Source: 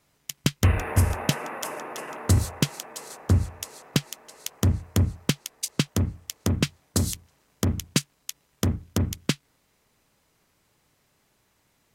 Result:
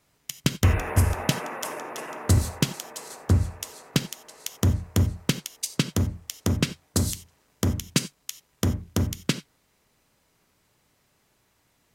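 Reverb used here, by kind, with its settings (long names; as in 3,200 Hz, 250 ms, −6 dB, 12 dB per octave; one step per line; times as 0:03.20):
reverb whose tail is shaped and stops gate 110 ms flat, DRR 11.5 dB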